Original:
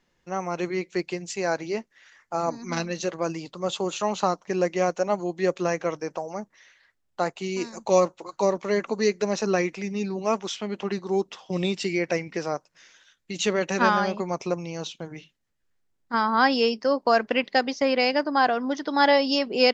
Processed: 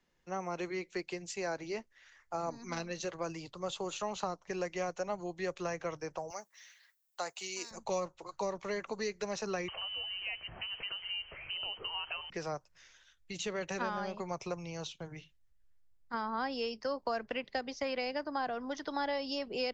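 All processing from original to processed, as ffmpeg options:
-filter_complex "[0:a]asettb=1/sr,asplit=3[a][b][c];[a]atrim=end=6.304[d];[b]atrim=start=6.3:end=7.71,asetpts=PTS-STARTPTS,afade=t=in:d=0.004:c=qsin,afade=t=out:st=1.406:d=0.004:c=qsin,highpass=f=390:p=1,aemphasis=mode=production:type=riaa[e];[c]atrim=start=7.706[f];[d][e]acrossfade=d=0.004:c1=hsin:c2=qsin[g];[g][f]acrossfade=d=0.004:c1=qsin:c2=hsin,asettb=1/sr,asplit=3[h][i][j];[h]atrim=end=9.684[k];[i]atrim=start=9.68:end=12.3,asetpts=PTS-STARTPTS,afade=t=in:d=0.004:c=qsin,afade=t=out:st=2.616:d=0.004:c=qsin,aeval=exprs='val(0)+0.5*0.02*sgn(val(0))':c=same,lowpass=f=2.7k:t=q:w=0.5098,lowpass=f=2.7k:t=q:w=0.6013,lowpass=f=2.7k:t=q:w=0.9,lowpass=f=2.7k:t=q:w=2.563,afreqshift=-3200[l];[j]atrim=start=12.296[m];[k][l]acrossfade=d=0.004:c1=hsin:c2=qsin[n];[n][m]acrossfade=d=0.004:c1=qsin:c2=hsin,asubboost=boost=10.5:cutoff=72,acrossover=split=84|350|710[o][p][q][r];[o]acompressor=threshold=-56dB:ratio=4[s];[p]acompressor=threshold=-36dB:ratio=4[t];[q]acompressor=threshold=-33dB:ratio=4[u];[r]acompressor=threshold=-32dB:ratio=4[v];[s][t][u][v]amix=inputs=4:normalize=0,volume=-6.5dB"

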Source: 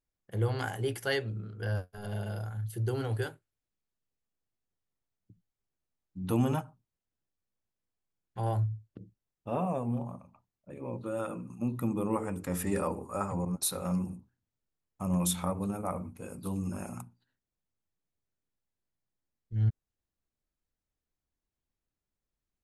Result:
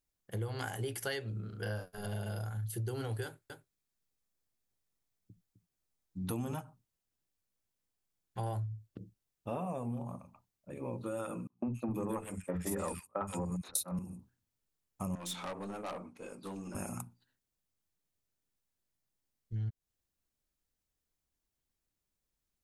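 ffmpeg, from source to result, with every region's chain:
-filter_complex "[0:a]asettb=1/sr,asplit=3[a][b][c];[a]atrim=end=1.494[d];[b]atrim=start=1.49:end=2.01,asetpts=PTS-STARTPTS,afade=t=in:d=0.004:c=qsin,afade=t=out:st=0.516:d=0.004:c=qsin,equalizer=f=88:t=o:w=0.41:g=-14,asplit=2[e][f];[f]adelay=38,volume=-3.5dB[g];[e][g]amix=inputs=2:normalize=0,atrim=end_sample=22932[h];[c]atrim=start=2.006[i];[d][h]acrossfade=d=0.004:c1=hsin:c2=qsin[j];[j][i]acrossfade=d=0.004:c1=qsin:c2=hsin,asettb=1/sr,asplit=3[k][l][m];[k]atrim=end=3.244[n];[l]atrim=start=3.24:end=6.54,asetpts=PTS-STARTPTS,afade=t=in:d=0.004:c=qsin,afade=t=out:st=3.296:d=0.004:c=qsin,bandreject=f=2.9k:w=17,aecho=1:1:257:0.316,atrim=end_sample=145530[o];[m]atrim=start=6.536[p];[n][o]acrossfade=d=0.004:c1=hsin:c2=qsin[q];[q][p]acrossfade=d=0.004:c1=qsin:c2=hsin,asettb=1/sr,asplit=3[r][s][t];[r]atrim=end=11.474[u];[s]atrim=start=11.47:end=13.99,asetpts=PTS-STARTPTS,afade=t=in:d=0.004:c=qsin,afade=t=out:st=2.516:d=0.004:c=qsin,agate=range=-37dB:threshold=-34dB:ratio=16:release=100:detection=peak,aeval=exprs='0.158*sin(PI/2*1.58*val(0)/0.158)':c=same,acrossover=split=190|2100[v][w][x];[v]adelay=50[y];[x]adelay=120[z];[y][w][z]amix=inputs=3:normalize=0,atrim=end_sample=111132[aa];[t]atrim=start=13.986[ab];[u][aa]acrossfade=d=0.004:c1=hsin:c2=qsin[ac];[ac][ab]acrossfade=d=0.004:c1=qsin:c2=hsin,asettb=1/sr,asplit=3[ad][ae][af];[ad]atrim=end=15.154[ag];[ae]atrim=start=15.15:end=16.75,asetpts=PTS-STARTPTS,afade=t=in:d=0.004:c=qsin,afade=t=out:st=1.596:d=0.004:c=qsin,highpass=300,lowpass=5k,aeval=exprs='(tanh(63.1*val(0)+0.2)-tanh(0.2))/63.1':c=same[ah];[af]atrim=start=16.746[ai];[ag][ah]acrossfade=d=0.004:c1=hsin:c2=qsin[aj];[aj][ai]acrossfade=d=0.004:c1=qsin:c2=hsin,highshelf=f=3.8k:g=6.5,acompressor=threshold=-34dB:ratio=6"

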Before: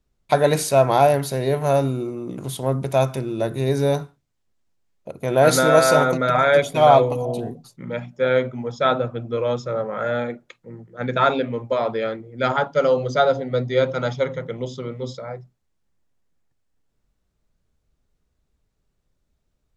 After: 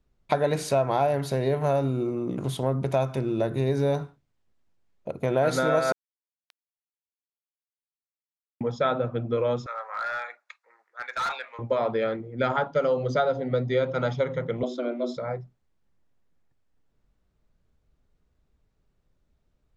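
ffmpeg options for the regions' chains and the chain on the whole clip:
-filter_complex "[0:a]asettb=1/sr,asplit=3[a][b][c];[a]atrim=end=5.924[d];[b]atrim=start=5.92:end=8.61,asetpts=PTS-STARTPTS,afade=t=in:d=0.004:c=qsin,afade=t=out:st=2.686:d=0.004:c=qsin,bandpass=f=3.8k:t=q:w=20,aeval=exprs='val(0)*gte(abs(val(0)),0.0266)':c=same[e];[c]atrim=start=8.606[f];[d][e]acrossfade=d=0.004:c1=hsin:c2=qsin[g];[g][f]acrossfade=d=0.004:c1=qsin:c2=hsin,asettb=1/sr,asplit=3[h][i][j];[h]atrim=end=9.664[k];[i]atrim=start=9.66:end=11.59,asetpts=PTS-STARTPTS,afade=t=in:d=0.004:c=qsin,afade=t=out:st=1.926:d=0.004:c=qsin,highpass=f=950:w=0.5412,highpass=f=950:w=1.3066,equalizer=f=3.1k:w=5.9:g=-10,volume=26dB,asoftclip=hard,volume=-26dB[l];[j]atrim=start=11.586[m];[k][l]acrossfade=d=0.004:c1=hsin:c2=qsin[n];[n][m]acrossfade=d=0.004:c1=qsin:c2=hsin,asettb=1/sr,asplit=3[o][p][q];[o]atrim=end=14.634[r];[p]atrim=start=14.63:end=15.17,asetpts=PTS-STARTPTS,afade=t=in:d=0.004:c=qsin,afade=t=out:st=0.536:d=0.004:c=qsin,highshelf=f=8.7k:g=-6,afreqshift=120[s];[q]atrim=start=15.166[t];[r][s]acrossfade=d=0.004:c1=hsin:c2=qsin[u];[u][t]acrossfade=d=0.004:c1=qsin:c2=hsin,aemphasis=mode=reproduction:type=50kf,acompressor=threshold=-24dB:ratio=3,volume=1.5dB"

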